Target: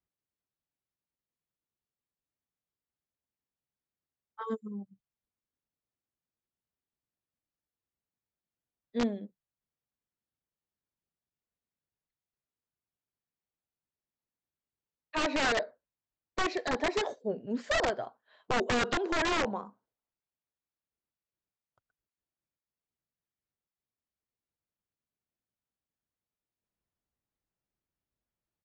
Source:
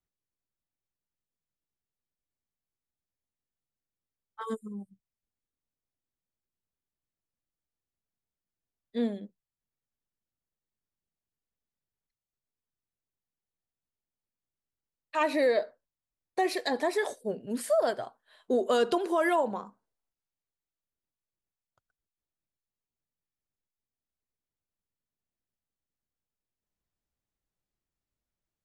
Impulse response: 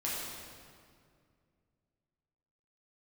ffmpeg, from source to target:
-af "acontrast=30,highpass=f=58:p=1,aresample=16000,aeval=exprs='(mod(6.31*val(0)+1,2)-1)/6.31':c=same,aresample=44100,aemphasis=mode=reproduction:type=75kf,volume=0.562"

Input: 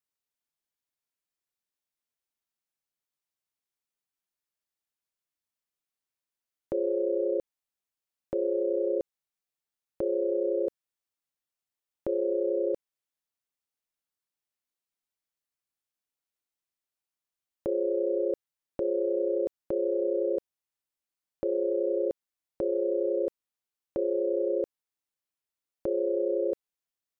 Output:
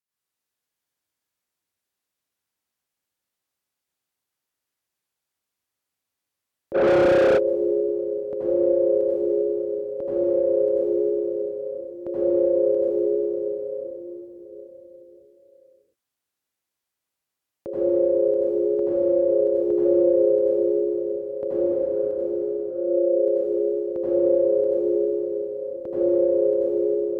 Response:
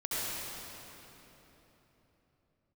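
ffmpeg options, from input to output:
-filter_complex "[0:a]asettb=1/sr,asplit=3[s0][s1][s2];[s0]atrim=end=21.584[s3];[s1]atrim=start=21.58:end=22.76,asetpts=PTS-STARTPTS,afade=t=in:d=0.004:c=qsin,afade=t=out:st=1.176:d=0.004:c=qsin,agate=range=0.0224:threshold=0.0794:ratio=3:detection=peak[s4];[s2]atrim=start=22.756[s5];[s3][s4]acrossfade=d=0.004:c1=hsin:c2=qsin[s6];[s6][s5]acrossfade=d=0.004:c1=qsin:c2=hsin[s7];[1:a]atrim=start_sample=2205,asetrate=37044,aresample=44100[s8];[s7][s8]afir=irnorm=-1:irlink=0,asplit=3[s9][s10][s11];[s9]afade=t=out:st=6.74:d=0.02[s12];[s10]asplit=2[s13][s14];[s14]highpass=f=720:p=1,volume=44.7,asoftclip=type=tanh:threshold=0.299[s15];[s13][s15]amix=inputs=2:normalize=0,lowpass=f=1100:p=1,volume=0.501,afade=t=in:st=6.74:d=0.02,afade=t=out:st=7.37:d=0.02[s16];[s11]afade=t=in:st=7.37:d=0.02[s17];[s12][s16][s17]amix=inputs=3:normalize=0,highpass=49"

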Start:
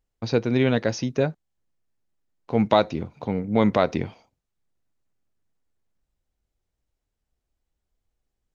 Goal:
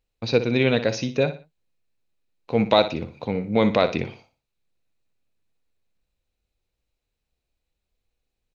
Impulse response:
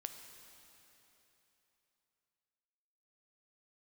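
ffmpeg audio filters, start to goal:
-af "equalizer=f=500:t=o:w=0.33:g=5,equalizer=f=2500:t=o:w=0.33:g=10,equalizer=f=4000:t=o:w=0.33:g=9,aecho=1:1:60|120|180:0.251|0.0779|0.0241,volume=0.891"

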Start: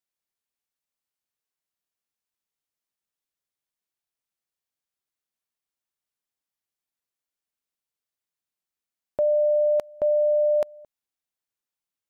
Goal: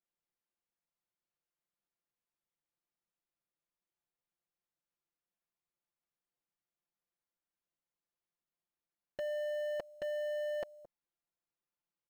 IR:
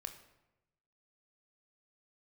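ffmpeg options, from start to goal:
-af "lowpass=f=1200:p=1,aecho=1:1:5.8:0.68,asoftclip=type=tanh:threshold=0.0211,acrusher=bits=7:mode=log:mix=0:aa=0.000001,volume=0.841"

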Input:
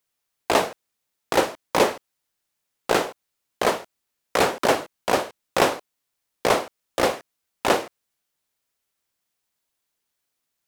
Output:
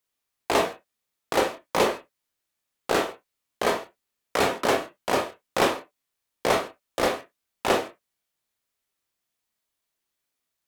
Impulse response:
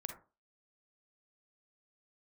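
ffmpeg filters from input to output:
-filter_complex "[1:a]atrim=start_sample=2205,afade=t=out:st=0.27:d=0.01,atrim=end_sample=12348,asetrate=83790,aresample=44100[s0];[0:a][s0]afir=irnorm=-1:irlink=0,volume=1.88"

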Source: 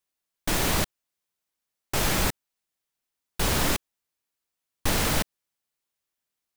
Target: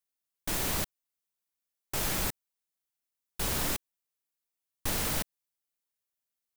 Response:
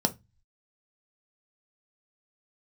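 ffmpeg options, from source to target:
-af "highshelf=f=7700:g=7.5,volume=0.376"

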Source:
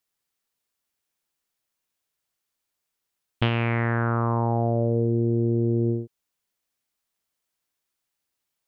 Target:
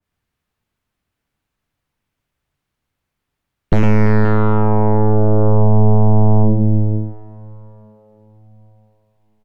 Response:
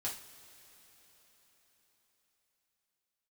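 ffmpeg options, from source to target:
-filter_complex "[0:a]bass=f=250:g=14,treble=f=4000:g=-13,aecho=1:1:101|312|485:0.447|0.158|0.188,acrossover=split=330|1200[s0][s1][s2];[s2]asoftclip=type=tanh:threshold=0.0562[s3];[s0][s1][s3]amix=inputs=3:normalize=0,aeval=exprs='0.794*(cos(1*acos(clip(val(0)/0.794,-1,1)))-cos(1*PI/2))+0.398*(cos(6*acos(clip(val(0)/0.794,-1,1)))-cos(6*PI/2))':c=same,asplit=2[s4][s5];[1:a]atrim=start_sample=2205[s6];[s5][s6]afir=irnorm=-1:irlink=0,volume=0.224[s7];[s4][s7]amix=inputs=2:normalize=0,asetrate=40517,aresample=44100,alimiter=level_in=2.66:limit=0.891:release=50:level=0:latency=1,adynamicequalizer=threshold=0.0224:dfrequency=1700:dqfactor=0.7:tfrequency=1700:tqfactor=0.7:attack=5:release=100:ratio=0.375:range=2.5:mode=cutabove:tftype=highshelf,volume=0.794"

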